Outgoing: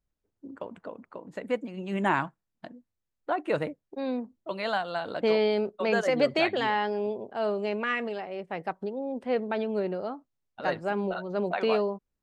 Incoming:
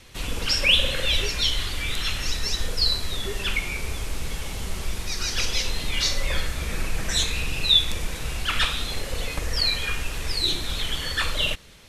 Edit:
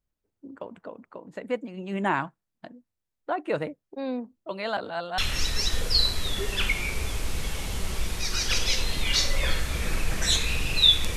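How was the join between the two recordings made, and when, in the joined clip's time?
outgoing
0:04.77–0:05.18: reverse
0:05.18: continue with incoming from 0:02.05

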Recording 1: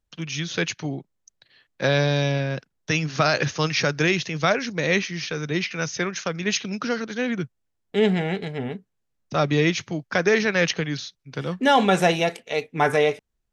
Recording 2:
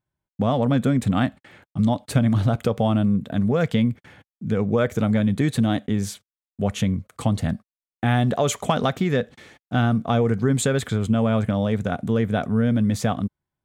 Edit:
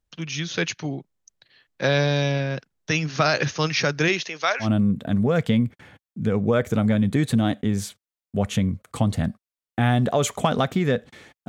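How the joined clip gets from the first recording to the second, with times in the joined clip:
recording 1
0:04.08–0:04.69: high-pass filter 200 Hz → 1,300 Hz
0:04.64: continue with recording 2 from 0:02.89, crossfade 0.10 s

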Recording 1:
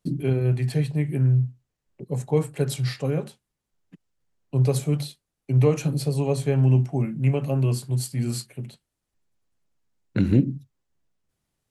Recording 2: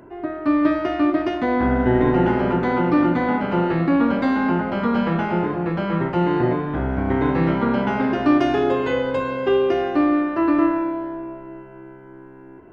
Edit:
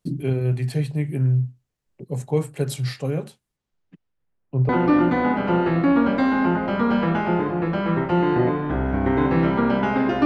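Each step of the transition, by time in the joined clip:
recording 1
0:03.56–0:04.69: low-pass filter 6,800 Hz → 1,400 Hz
0:04.69: continue with recording 2 from 0:02.73

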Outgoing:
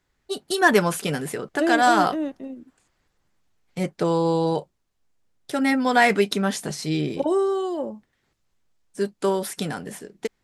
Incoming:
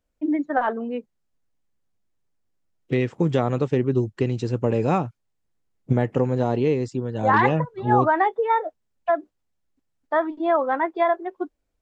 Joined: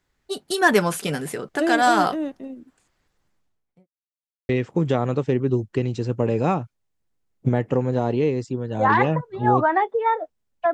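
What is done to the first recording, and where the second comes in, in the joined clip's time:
outgoing
0:03.22–0:03.88: fade out and dull
0:03.88–0:04.49: silence
0:04.49: continue with incoming from 0:02.93

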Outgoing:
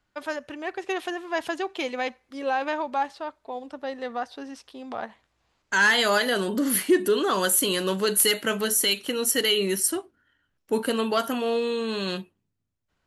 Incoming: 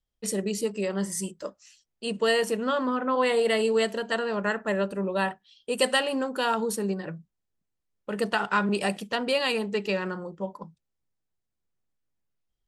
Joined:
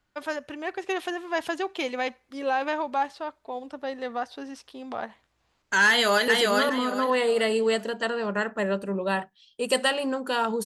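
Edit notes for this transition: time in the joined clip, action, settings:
outgoing
0:05.88–0:06.28: delay throw 410 ms, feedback 30%, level −2 dB
0:06.28: continue with incoming from 0:02.37

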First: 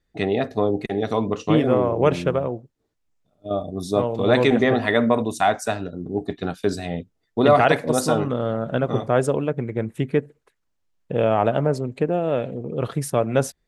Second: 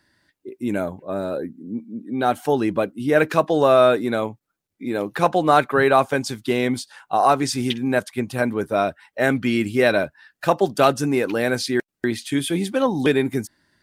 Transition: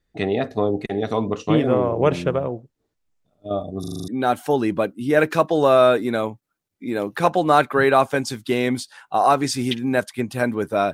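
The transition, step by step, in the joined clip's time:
first
0:03.80: stutter in place 0.04 s, 7 plays
0:04.08: continue with second from 0:02.07

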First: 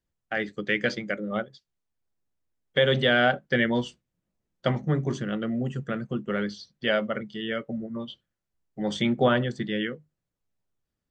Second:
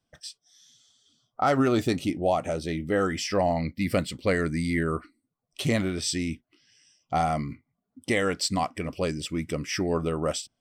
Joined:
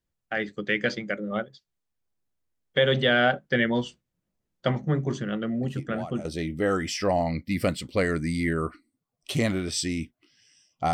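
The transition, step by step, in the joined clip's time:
first
0:05.63: mix in second from 0:01.93 0.62 s −12.5 dB
0:06.25: continue with second from 0:02.55

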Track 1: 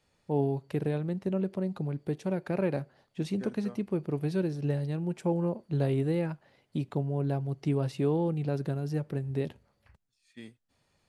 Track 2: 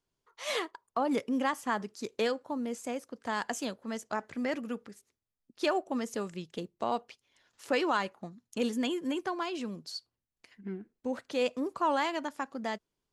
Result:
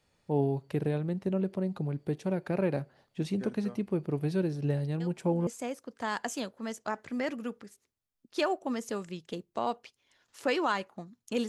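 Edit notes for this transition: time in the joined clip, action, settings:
track 1
0:05.00: mix in track 2 from 0:02.25 0.47 s −15 dB
0:05.47: continue with track 2 from 0:02.72

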